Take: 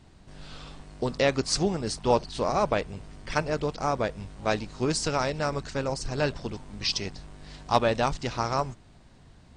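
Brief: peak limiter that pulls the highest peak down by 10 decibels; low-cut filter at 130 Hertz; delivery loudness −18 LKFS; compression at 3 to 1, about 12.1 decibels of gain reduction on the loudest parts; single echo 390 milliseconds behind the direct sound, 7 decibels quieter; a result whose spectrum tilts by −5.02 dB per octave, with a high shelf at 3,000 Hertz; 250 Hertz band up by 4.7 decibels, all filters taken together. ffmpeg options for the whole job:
ffmpeg -i in.wav -af "highpass=130,equalizer=frequency=250:width_type=o:gain=6.5,highshelf=frequency=3000:gain=-5,acompressor=threshold=-33dB:ratio=3,alimiter=level_in=2dB:limit=-24dB:level=0:latency=1,volume=-2dB,aecho=1:1:390:0.447,volume=20.5dB" out.wav

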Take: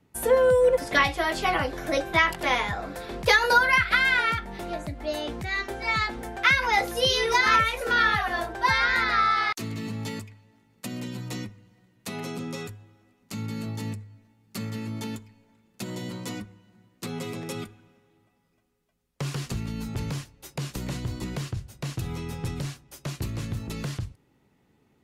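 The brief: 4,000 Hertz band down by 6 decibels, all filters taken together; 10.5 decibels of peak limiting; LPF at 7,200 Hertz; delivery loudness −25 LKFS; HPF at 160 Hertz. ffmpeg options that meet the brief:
ffmpeg -i in.wav -af "highpass=160,lowpass=7200,equalizer=frequency=4000:width_type=o:gain=-7.5,volume=6dB,alimiter=limit=-13dB:level=0:latency=1" out.wav

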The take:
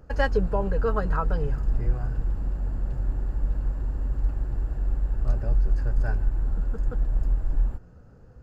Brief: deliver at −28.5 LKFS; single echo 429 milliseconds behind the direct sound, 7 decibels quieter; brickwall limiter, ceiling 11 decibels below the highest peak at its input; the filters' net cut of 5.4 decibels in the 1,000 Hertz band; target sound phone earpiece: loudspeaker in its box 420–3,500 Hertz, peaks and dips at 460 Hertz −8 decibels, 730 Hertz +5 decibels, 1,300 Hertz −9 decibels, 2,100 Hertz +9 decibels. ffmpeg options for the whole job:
ffmpeg -i in.wav -af "equalizer=frequency=1000:width_type=o:gain=-6.5,alimiter=limit=-21.5dB:level=0:latency=1,highpass=420,equalizer=frequency=460:width_type=q:width=4:gain=-8,equalizer=frequency=730:width_type=q:width=4:gain=5,equalizer=frequency=1300:width_type=q:width=4:gain=-9,equalizer=frequency=2100:width_type=q:width=4:gain=9,lowpass=frequency=3500:width=0.5412,lowpass=frequency=3500:width=1.3066,aecho=1:1:429:0.447,volume=17.5dB" out.wav

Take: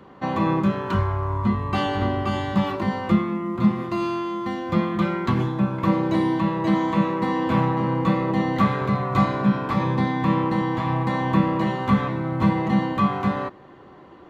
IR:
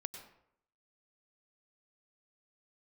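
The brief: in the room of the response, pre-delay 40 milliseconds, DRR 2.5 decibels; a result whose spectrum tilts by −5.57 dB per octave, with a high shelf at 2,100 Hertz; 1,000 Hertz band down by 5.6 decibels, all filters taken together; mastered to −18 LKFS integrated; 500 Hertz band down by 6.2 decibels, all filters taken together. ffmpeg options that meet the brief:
-filter_complex "[0:a]equalizer=frequency=500:width_type=o:gain=-8,equalizer=frequency=1000:width_type=o:gain=-6.5,highshelf=frequency=2100:gain=8.5,asplit=2[link_01][link_02];[1:a]atrim=start_sample=2205,adelay=40[link_03];[link_02][link_03]afir=irnorm=-1:irlink=0,volume=-0.5dB[link_04];[link_01][link_04]amix=inputs=2:normalize=0,volume=4dB"

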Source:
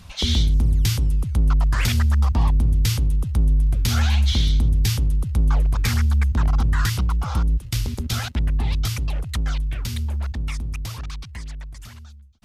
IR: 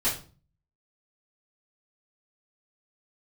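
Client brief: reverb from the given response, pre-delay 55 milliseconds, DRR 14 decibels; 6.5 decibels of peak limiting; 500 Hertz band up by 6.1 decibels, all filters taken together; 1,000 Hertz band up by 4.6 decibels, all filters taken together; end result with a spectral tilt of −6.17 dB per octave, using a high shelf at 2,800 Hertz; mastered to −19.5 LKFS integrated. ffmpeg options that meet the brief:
-filter_complex "[0:a]equalizer=frequency=500:width_type=o:gain=7,equalizer=frequency=1000:width_type=o:gain=5,highshelf=frequency=2800:gain=-7,alimiter=limit=-14dB:level=0:latency=1,asplit=2[link_01][link_02];[1:a]atrim=start_sample=2205,adelay=55[link_03];[link_02][link_03]afir=irnorm=-1:irlink=0,volume=-23.5dB[link_04];[link_01][link_04]amix=inputs=2:normalize=0,volume=3.5dB"

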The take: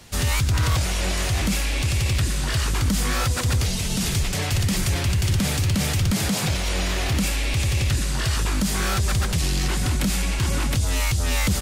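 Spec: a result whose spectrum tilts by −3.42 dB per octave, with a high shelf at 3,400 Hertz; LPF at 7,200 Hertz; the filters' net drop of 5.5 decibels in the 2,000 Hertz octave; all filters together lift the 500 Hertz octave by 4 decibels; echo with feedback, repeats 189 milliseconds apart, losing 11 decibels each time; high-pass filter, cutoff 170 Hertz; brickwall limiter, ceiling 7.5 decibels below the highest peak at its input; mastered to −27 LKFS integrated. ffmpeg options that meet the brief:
ffmpeg -i in.wav -af "highpass=170,lowpass=7200,equalizer=frequency=500:width_type=o:gain=5.5,equalizer=frequency=2000:width_type=o:gain=-8.5,highshelf=frequency=3400:gain=3,alimiter=limit=-19dB:level=0:latency=1,aecho=1:1:189|378|567:0.282|0.0789|0.0221,volume=0.5dB" out.wav

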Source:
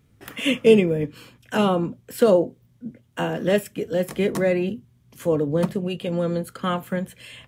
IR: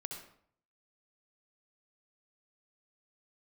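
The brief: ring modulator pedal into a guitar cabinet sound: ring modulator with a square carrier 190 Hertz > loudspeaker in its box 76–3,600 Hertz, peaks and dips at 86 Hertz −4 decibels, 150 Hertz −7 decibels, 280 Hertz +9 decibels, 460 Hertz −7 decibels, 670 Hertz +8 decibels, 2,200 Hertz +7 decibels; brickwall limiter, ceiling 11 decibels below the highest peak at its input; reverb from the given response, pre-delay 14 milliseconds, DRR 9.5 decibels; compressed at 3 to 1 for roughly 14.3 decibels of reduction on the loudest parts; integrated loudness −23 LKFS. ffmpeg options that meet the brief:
-filter_complex "[0:a]acompressor=threshold=-30dB:ratio=3,alimiter=level_in=3dB:limit=-24dB:level=0:latency=1,volume=-3dB,asplit=2[link_01][link_02];[1:a]atrim=start_sample=2205,adelay=14[link_03];[link_02][link_03]afir=irnorm=-1:irlink=0,volume=-8dB[link_04];[link_01][link_04]amix=inputs=2:normalize=0,aeval=exprs='val(0)*sgn(sin(2*PI*190*n/s))':channel_layout=same,highpass=76,equalizer=frequency=86:width_type=q:width=4:gain=-4,equalizer=frequency=150:width_type=q:width=4:gain=-7,equalizer=frequency=280:width_type=q:width=4:gain=9,equalizer=frequency=460:width_type=q:width=4:gain=-7,equalizer=frequency=670:width_type=q:width=4:gain=8,equalizer=frequency=2200:width_type=q:width=4:gain=7,lowpass=frequency=3600:width=0.5412,lowpass=frequency=3600:width=1.3066,volume=12dB"

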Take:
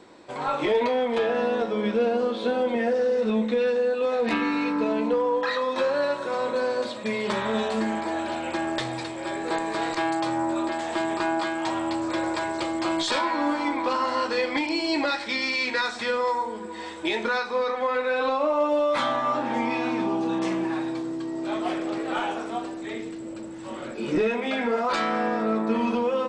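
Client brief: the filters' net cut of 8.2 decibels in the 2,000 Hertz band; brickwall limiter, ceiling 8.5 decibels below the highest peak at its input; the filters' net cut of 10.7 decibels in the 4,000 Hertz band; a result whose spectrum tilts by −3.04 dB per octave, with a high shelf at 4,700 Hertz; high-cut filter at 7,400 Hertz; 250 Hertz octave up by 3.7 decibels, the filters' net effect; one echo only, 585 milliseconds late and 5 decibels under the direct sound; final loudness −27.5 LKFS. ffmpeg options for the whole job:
ffmpeg -i in.wav -af "lowpass=7400,equalizer=frequency=250:width_type=o:gain=5,equalizer=frequency=2000:width_type=o:gain=-8.5,equalizer=frequency=4000:width_type=o:gain=-7,highshelf=frequency=4700:gain=-6.5,alimiter=limit=-19dB:level=0:latency=1,aecho=1:1:585:0.562,volume=-1dB" out.wav

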